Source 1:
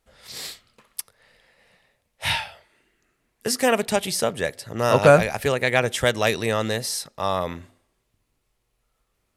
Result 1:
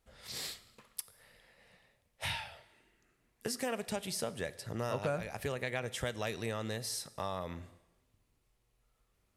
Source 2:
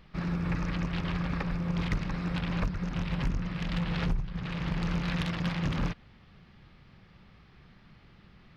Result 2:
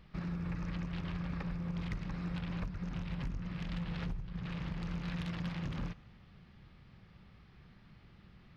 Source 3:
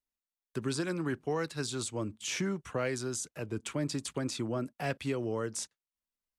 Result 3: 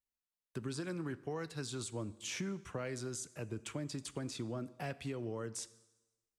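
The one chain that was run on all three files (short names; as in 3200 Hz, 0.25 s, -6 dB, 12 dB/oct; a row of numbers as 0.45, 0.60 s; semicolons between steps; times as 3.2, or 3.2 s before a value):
bell 84 Hz +4 dB 2.8 oct; compressor 3:1, threshold -32 dBFS; plate-style reverb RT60 1.1 s, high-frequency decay 0.95×, DRR 16 dB; gain -5 dB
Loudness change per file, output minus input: -16.5, -7.5, -6.5 LU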